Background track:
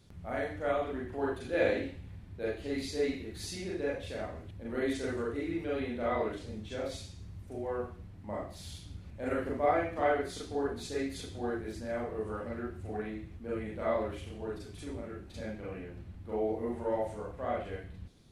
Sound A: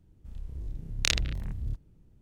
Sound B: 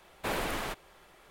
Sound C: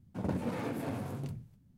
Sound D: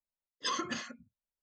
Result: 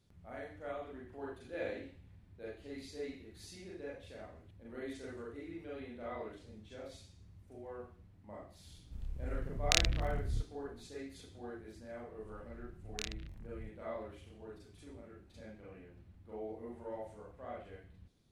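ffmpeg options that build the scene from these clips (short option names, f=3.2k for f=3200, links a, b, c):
-filter_complex "[1:a]asplit=2[a][b];[0:a]volume=-11.5dB[c];[a]atrim=end=2.21,asetpts=PTS-STARTPTS,volume=-2.5dB,afade=t=in:d=0.004:c=hsin,afade=t=out:st=2.206:d=0.004:c=hsin,adelay=8670[d];[b]atrim=end=2.21,asetpts=PTS-STARTPTS,volume=-16dB,afade=t=in:d=0.004:c=hsin,afade=t=out:st=2.206:d=0.004:c=hsin,adelay=11940[e];[c][d][e]amix=inputs=3:normalize=0"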